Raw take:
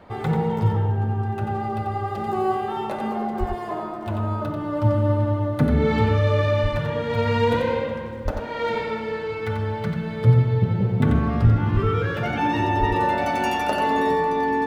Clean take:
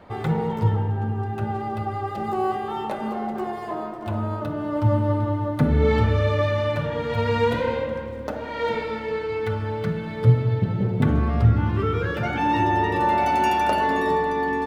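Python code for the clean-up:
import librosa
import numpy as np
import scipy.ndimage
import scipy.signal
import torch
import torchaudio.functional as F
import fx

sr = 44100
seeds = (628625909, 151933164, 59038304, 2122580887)

y = fx.fix_deplosive(x, sr, at_s=(3.39, 6.62, 8.24, 11.43, 11.73, 12.79))
y = fx.fix_echo_inverse(y, sr, delay_ms=90, level_db=-6.0)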